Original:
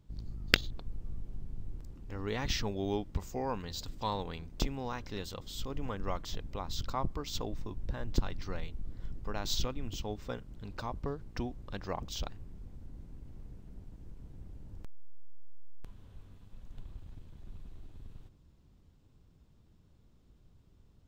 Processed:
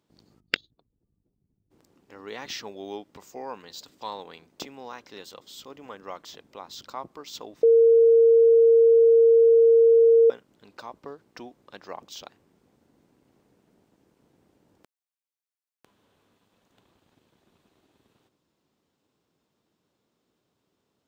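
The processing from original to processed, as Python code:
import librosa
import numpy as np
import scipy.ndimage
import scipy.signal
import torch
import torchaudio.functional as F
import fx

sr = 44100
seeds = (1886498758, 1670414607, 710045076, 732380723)

y = fx.spec_expand(x, sr, power=1.6, at=(0.39, 1.7), fade=0.02)
y = fx.edit(y, sr, fx.bleep(start_s=7.63, length_s=2.67, hz=459.0, db=-11.5), tone=tone)
y = scipy.signal.sosfilt(scipy.signal.butter(2, 340.0, 'highpass', fs=sr, output='sos'), y)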